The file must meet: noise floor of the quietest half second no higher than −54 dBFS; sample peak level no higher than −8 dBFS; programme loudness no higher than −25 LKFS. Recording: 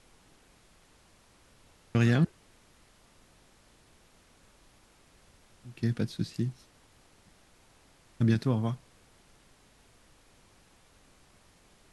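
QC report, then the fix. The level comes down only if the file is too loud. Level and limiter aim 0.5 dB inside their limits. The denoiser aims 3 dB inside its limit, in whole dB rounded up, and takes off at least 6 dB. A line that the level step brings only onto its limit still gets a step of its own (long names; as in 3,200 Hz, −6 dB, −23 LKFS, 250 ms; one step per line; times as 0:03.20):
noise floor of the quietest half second −61 dBFS: in spec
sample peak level −13.0 dBFS: in spec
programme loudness −30.0 LKFS: in spec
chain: no processing needed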